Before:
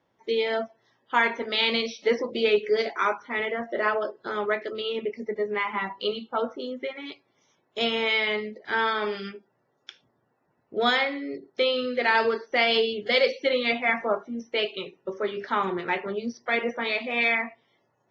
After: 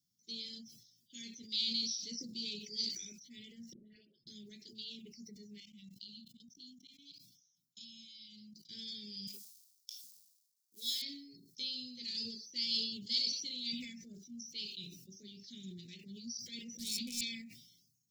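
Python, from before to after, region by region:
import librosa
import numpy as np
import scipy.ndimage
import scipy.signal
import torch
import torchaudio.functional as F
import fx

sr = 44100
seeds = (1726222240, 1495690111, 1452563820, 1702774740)

y = fx.chain(x, sr, fx.level_steps(step_db=13),
    fx.air_absorb(metres=450.0),
    fx.dispersion(late='highs', ms=133.0, hz=930.0), at=(3.73, 4.27))
y = fx.chain(y, sr, fx.cheby2_bandstop(low_hz=590.0, high_hz=1400.0, order=4, stop_db=50),
    fx.level_steps(step_db=21), at=(5.6, 8.69))
y = fx.chain(y, sr, fx.law_mismatch(coded='A'),
    fx.highpass(hz=470.0, slope=12), at=(9.27, 11.02))
y = fx.chain(y, sr, fx.clip_hard(threshold_db=-24.0),
    fx.low_shelf(hz=370.0, db=8.5), at=(16.75, 17.21))
y = scipy.signal.sosfilt(scipy.signal.ellip(3, 1.0, 80, [190.0, 5000.0], 'bandstop', fs=sr, output='sos'), y)
y = fx.tilt_eq(y, sr, slope=3.0)
y = fx.sustainer(y, sr, db_per_s=57.0)
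y = y * librosa.db_to_amplitude(-2.0)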